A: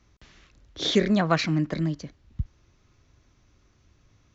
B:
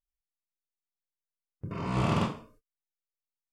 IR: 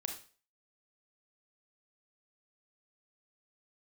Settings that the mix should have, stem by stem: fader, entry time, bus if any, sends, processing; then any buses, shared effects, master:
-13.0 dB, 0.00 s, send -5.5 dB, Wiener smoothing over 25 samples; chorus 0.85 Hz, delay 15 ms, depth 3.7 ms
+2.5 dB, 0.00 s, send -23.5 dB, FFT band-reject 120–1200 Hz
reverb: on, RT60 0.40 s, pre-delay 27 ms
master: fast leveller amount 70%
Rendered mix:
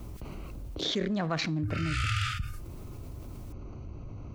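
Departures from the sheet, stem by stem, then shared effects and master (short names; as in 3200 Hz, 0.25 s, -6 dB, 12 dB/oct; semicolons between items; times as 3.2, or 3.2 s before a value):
stem A: missing chorus 0.85 Hz, delay 15 ms, depth 3.7 ms; reverb return -7.5 dB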